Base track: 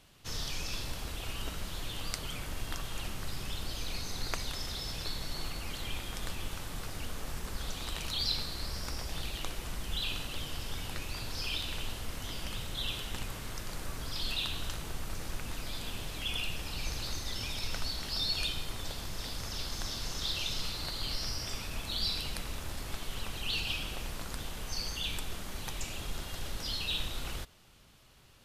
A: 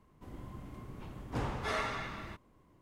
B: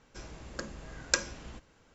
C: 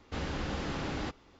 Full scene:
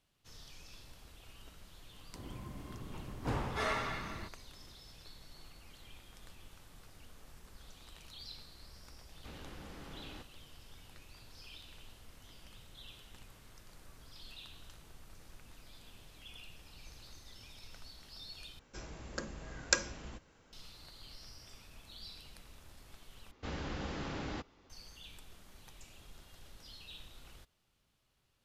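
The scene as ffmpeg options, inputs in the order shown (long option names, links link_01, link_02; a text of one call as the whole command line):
ffmpeg -i bed.wav -i cue0.wav -i cue1.wav -i cue2.wav -filter_complex "[3:a]asplit=2[link_01][link_02];[0:a]volume=-17dB,asplit=3[link_03][link_04][link_05];[link_03]atrim=end=18.594[link_06];[2:a]atrim=end=1.94,asetpts=PTS-STARTPTS,volume=-1.5dB[link_07];[link_04]atrim=start=20.526:end=23.314[link_08];[link_02]atrim=end=1.39,asetpts=PTS-STARTPTS,volume=-5dB[link_09];[link_05]atrim=start=24.696[link_10];[1:a]atrim=end=2.81,asetpts=PTS-STARTPTS,afade=type=in:duration=0.004:curve=hsin,afade=type=out:start_time=2.806:duration=0.004:curve=hsin,adelay=1920[link_11];[link_01]atrim=end=1.39,asetpts=PTS-STARTPTS,volume=-15dB,afade=type=in:duration=0.004:curve=hsin,afade=type=out:start_time=1.386:duration=0.004:curve=hsin,adelay=9120[link_12];[link_06][link_07]acrossfade=duration=0.004:curve1=hsin:curve2=hsin[link_13];[link_13][link_08]acrossfade=duration=0.004:curve1=hsin:curve2=hsin[link_14];[link_14][link_09]acrossfade=duration=0.004:curve1=hsin:curve2=hsin[link_15];[link_15][link_10]acrossfade=duration=0.004:curve1=hsin:curve2=hsin[link_16];[link_16][link_11][link_12]amix=inputs=3:normalize=0" out.wav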